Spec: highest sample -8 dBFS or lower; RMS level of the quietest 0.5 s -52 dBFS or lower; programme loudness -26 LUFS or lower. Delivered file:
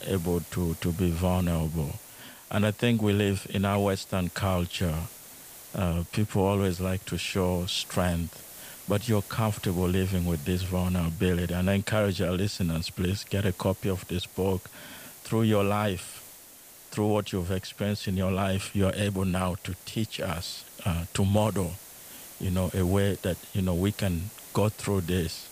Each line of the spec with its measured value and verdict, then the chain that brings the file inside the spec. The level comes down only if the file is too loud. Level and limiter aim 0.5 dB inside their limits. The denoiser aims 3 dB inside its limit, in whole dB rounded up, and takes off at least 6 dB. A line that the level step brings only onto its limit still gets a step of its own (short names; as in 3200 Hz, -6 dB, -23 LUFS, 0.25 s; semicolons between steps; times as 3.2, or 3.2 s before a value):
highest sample -9.5 dBFS: OK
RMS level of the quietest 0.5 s -50 dBFS: fail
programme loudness -28.5 LUFS: OK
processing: denoiser 6 dB, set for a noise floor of -50 dBFS